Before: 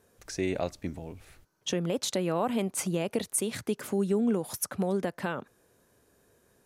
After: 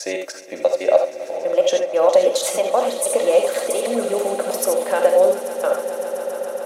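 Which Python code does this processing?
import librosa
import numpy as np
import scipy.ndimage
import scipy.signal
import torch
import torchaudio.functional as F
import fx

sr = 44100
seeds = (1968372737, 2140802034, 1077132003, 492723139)

p1 = fx.block_reorder(x, sr, ms=161.0, group=3)
p2 = fx.highpass_res(p1, sr, hz=580.0, q=4.9)
p3 = p2 + fx.echo_swell(p2, sr, ms=139, loudest=5, wet_db=-17, dry=0)
p4 = fx.rev_gated(p3, sr, seeds[0], gate_ms=100, shape='rising', drr_db=3.5)
p5 = fx.rider(p4, sr, range_db=4, speed_s=2.0)
p6 = p4 + F.gain(torch.from_numpy(p5), 1.5).numpy()
p7 = p6 + 0.31 * np.pad(p6, (int(3.7 * sr / 1000.0), 0))[:len(p6)]
y = F.gain(torch.from_numpy(p7), -1.0).numpy()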